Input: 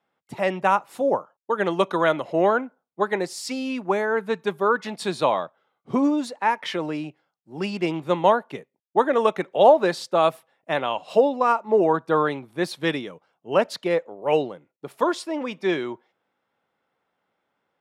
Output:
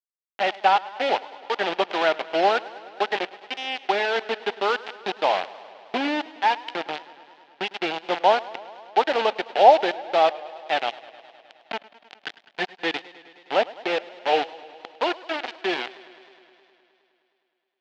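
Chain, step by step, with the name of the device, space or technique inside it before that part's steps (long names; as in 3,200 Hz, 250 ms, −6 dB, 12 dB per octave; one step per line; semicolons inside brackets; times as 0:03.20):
0:10.90–0:12.52: gain on a spectral selection 280–1,500 Hz −27 dB
0:11.42–0:12.70: comb filter 4.5 ms, depth 78%
high-frequency loss of the air 73 metres
hand-held game console (bit reduction 4 bits; loudspeaker in its box 410–4,000 Hz, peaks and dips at 530 Hz −4 dB, 770 Hz +8 dB, 1,100 Hz −8 dB, 2,900 Hz +3 dB)
feedback echo with a swinging delay time 104 ms, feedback 78%, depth 85 cents, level −20 dB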